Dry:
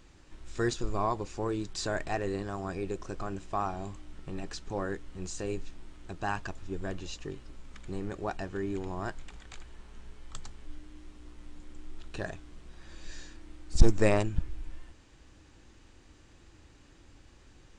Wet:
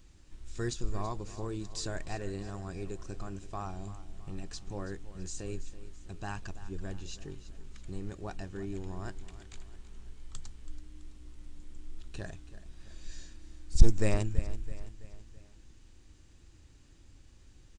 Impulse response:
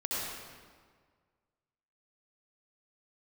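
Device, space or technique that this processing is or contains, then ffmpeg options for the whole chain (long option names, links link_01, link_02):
smiley-face EQ: -af "lowshelf=frequency=160:gain=6.5,equalizer=frequency=910:width_type=o:width=2.9:gain=-4.5,highshelf=frequency=5100:gain=6.5,aecho=1:1:330|660|990|1320:0.178|0.0854|0.041|0.0197,volume=-5dB"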